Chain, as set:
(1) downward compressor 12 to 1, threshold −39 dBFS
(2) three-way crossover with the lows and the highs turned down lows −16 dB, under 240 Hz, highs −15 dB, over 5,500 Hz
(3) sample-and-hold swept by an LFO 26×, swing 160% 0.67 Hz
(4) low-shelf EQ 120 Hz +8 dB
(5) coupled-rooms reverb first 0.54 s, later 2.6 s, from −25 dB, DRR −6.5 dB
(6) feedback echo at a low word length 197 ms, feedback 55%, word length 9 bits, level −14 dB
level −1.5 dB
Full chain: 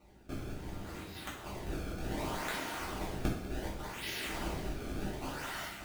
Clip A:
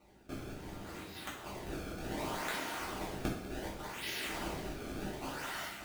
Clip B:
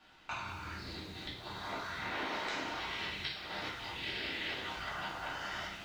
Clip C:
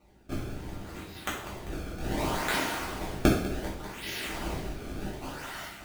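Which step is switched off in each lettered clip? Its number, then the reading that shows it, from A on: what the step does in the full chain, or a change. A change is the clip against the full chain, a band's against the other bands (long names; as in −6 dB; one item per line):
4, 125 Hz band −4.5 dB
3, change in crest factor −2.0 dB
1, average gain reduction 3.5 dB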